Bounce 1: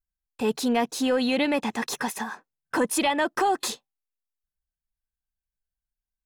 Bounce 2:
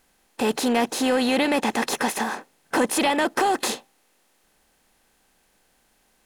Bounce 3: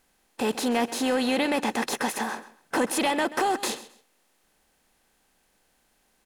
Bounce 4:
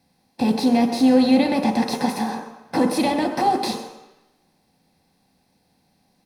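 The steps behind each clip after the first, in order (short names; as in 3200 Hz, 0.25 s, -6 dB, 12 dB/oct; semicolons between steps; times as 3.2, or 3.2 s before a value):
per-bin compression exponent 0.6
feedback echo 0.132 s, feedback 24%, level -16.5 dB; gain -3.5 dB
reverb RT60 1.0 s, pre-delay 3 ms, DRR 2.5 dB; gain -5.5 dB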